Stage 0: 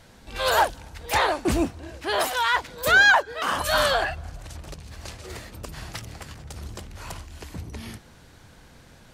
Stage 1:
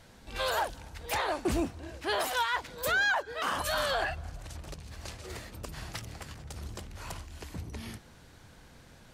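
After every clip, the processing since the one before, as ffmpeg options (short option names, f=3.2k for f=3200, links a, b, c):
-af "alimiter=limit=-16.5dB:level=0:latency=1:release=99,volume=-4dB"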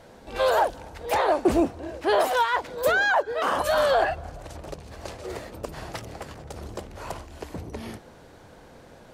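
-af "equalizer=f=530:t=o:w=2.3:g=12.5"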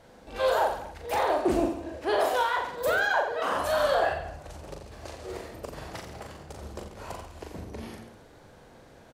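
-af "aecho=1:1:40|86|138.9|199.7|269.7:0.631|0.398|0.251|0.158|0.1,volume=-5.5dB"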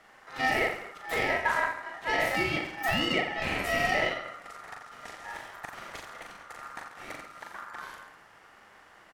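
-af "aeval=exprs='0.251*(cos(1*acos(clip(val(0)/0.251,-1,1)))-cos(1*PI/2))+0.0141*(cos(8*acos(clip(val(0)/0.251,-1,1)))-cos(8*PI/2))':c=same,aeval=exprs='val(0)*sin(2*PI*1300*n/s)':c=same"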